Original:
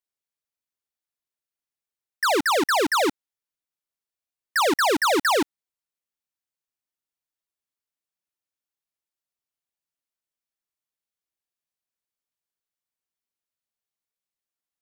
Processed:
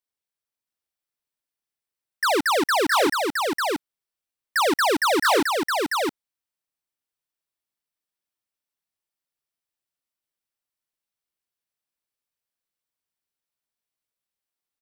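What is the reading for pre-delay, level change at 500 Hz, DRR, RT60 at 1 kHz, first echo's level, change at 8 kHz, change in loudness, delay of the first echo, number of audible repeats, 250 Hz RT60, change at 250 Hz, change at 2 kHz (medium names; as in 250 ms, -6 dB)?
no reverb, +1.5 dB, no reverb, no reverb, -3.5 dB, +0.5 dB, -0.5 dB, 666 ms, 1, no reverb, +1.5 dB, +1.5 dB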